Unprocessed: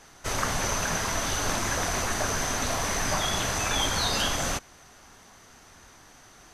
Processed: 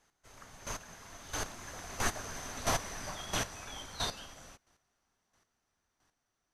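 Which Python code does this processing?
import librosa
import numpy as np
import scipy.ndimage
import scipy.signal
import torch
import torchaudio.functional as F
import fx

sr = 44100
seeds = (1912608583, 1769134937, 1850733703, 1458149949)

y = fx.doppler_pass(x, sr, speed_mps=9, closest_m=8.5, pass_at_s=2.59)
y = fx.chopper(y, sr, hz=1.5, depth_pct=65, duty_pct=15)
y = fx.upward_expand(y, sr, threshold_db=-47.0, expansion=1.5)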